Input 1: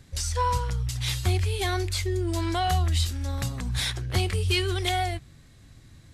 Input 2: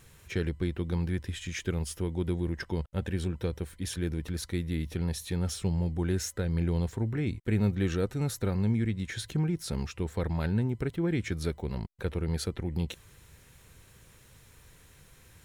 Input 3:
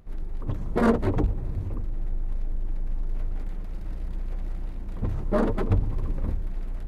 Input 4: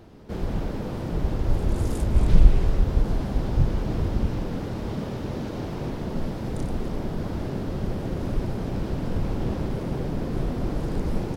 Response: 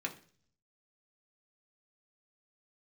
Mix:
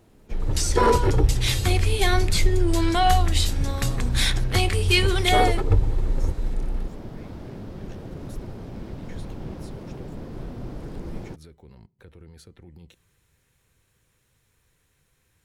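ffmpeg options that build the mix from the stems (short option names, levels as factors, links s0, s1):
-filter_complex "[0:a]adelay=400,volume=1.26,asplit=2[s0][s1];[s1]volume=0.501[s2];[1:a]acrossover=split=390[s3][s4];[s4]acompressor=threshold=0.0141:ratio=6[s5];[s3][s5]amix=inputs=2:normalize=0,alimiter=level_in=1.26:limit=0.0631:level=0:latency=1:release=18,volume=0.794,volume=0.251,asplit=3[s6][s7][s8];[s7]volume=0.168[s9];[2:a]aecho=1:1:2.3:0.73,volume=1.06[s10];[3:a]volume=0.376[s11];[s8]apad=whole_len=303444[s12];[s10][s12]sidechaingate=range=0.0224:threshold=0.002:ratio=16:detection=peak[s13];[4:a]atrim=start_sample=2205[s14];[s2][s9]amix=inputs=2:normalize=0[s15];[s15][s14]afir=irnorm=-1:irlink=0[s16];[s0][s6][s13][s11][s16]amix=inputs=5:normalize=0"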